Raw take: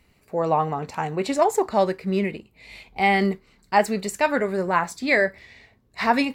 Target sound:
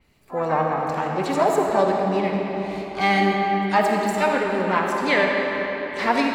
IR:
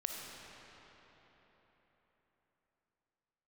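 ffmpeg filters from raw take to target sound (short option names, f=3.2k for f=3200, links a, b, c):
-filter_complex "[0:a]asplit=3[a][b][c];[b]asetrate=66075,aresample=44100,atempo=0.66742,volume=-12dB[d];[c]asetrate=88200,aresample=44100,atempo=0.5,volume=-15dB[e];[a][d][e]amix=inputs=3:normalize=0[f];[1:a]atrim=start_sample=2205[g];[f][g]afir=irnorm=-1:irlink=0,adynamicequalizer=threshold=0.0126:dfrequency=4500:dqfactor=0.7:tfrequency=4500:tqfactor=0.7:attack=5:release=100:ratio=0.375:range=2:mode=cutabove:tftype=highshelf"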